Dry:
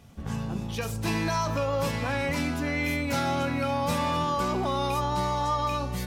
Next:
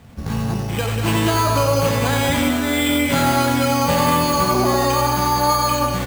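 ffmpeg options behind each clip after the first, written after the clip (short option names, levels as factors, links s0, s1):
-filter_complex "[0:a]acrusher=samples=8:mix=1:aa=0.000001,asplit=2[s0][s1];[s1]aecho=0:1:89|191:0.531|0.531[s2];[s0][s2]amix=inputs=2:normalize=0,volume=2.51"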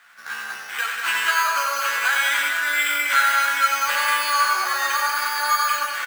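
-filter_complex "[0:a]highpass=f=1500:t=q:w=4.7,asplit=2[s0][s1];[s1]adelay=14,volume=0.596[s2];[s0][s2]amix=inputs=2:normalize=0,volume=0.668"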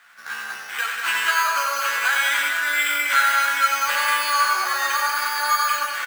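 -af anull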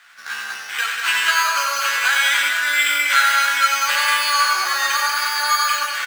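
-af "equalizer=f=4300:t=o:w=2.6:g=7.5,volume=0.891"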